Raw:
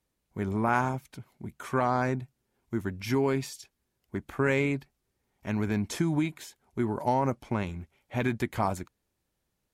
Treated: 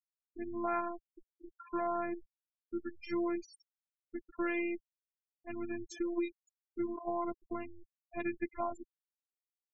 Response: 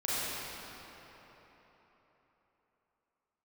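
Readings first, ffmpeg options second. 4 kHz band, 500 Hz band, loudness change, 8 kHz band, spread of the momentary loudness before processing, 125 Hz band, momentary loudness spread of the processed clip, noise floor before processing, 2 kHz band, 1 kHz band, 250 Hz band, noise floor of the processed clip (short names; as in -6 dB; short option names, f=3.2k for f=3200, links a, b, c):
-15.5 dB, -7.5 dB, -8.5 dB, -16.0 dB, 17 LU, -28.0 dB, 16 LU, -81 dBFS, -10.0 dB, -9.0 dB, -7.5 dB, under -85 dBFS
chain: -af "afftfilt=real='hypot(re,im)*cos(PI*b)':imag='0':win_size=512:overlap=0.75,afftfilt=real='re*gte(hypot(re,im),0.0251)':imag='im*gte(hypot(re,im),0.0251)':win_size=1024:overlap=0.75,volume=-4.5dB"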